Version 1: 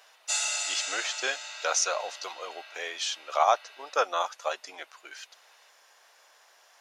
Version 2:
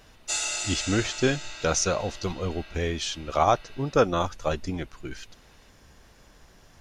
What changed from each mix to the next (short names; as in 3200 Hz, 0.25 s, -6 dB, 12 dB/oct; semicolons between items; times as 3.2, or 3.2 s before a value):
master: remove HPF 620 Hz 24 dB/oct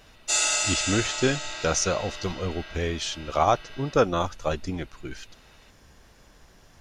reverb: on, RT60 1.2 s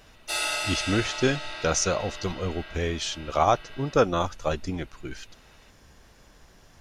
background: remove synth low-pass 7100 Hz, resonance Q 11